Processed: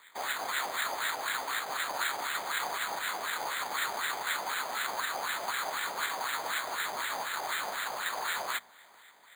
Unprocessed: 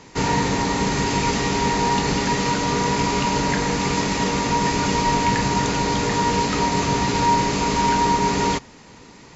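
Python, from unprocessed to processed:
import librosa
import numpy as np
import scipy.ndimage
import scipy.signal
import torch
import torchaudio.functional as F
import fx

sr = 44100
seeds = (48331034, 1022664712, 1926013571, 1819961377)

p1 = fx.spec_flatten(x, sr, power=0.48)
p2 = fx.peak_eq(p1, sr, hz=2100.0, db=10.5, octaves=0.63)
p3 = fx.hum_notches(p2, sr, base_hz=60, count=4)
p4 = (np.mod(10.0 ** (15.0 / 20.0) * p3 + 1.0, 2.0) - 1.0) / 10.0 ** (15.0 / 20.0)
p5 = fx.wah_lfo(p4, sr, hz=4.0, low_hz=730.0, high_hz=1700.0, q=2.9)
p6 = np.repeat(scipy.signal.resample_poly(p5, 1, 8), 8)[:len(p5)]
p7 = p6 + fx.echo_feedback(p6, sr, ms=438, feedback_pct=44, wet_db=-22.0, dry=0)
y = fx.upward_expand(p7, sr, threshold_db=-43.0, expansion=1.5)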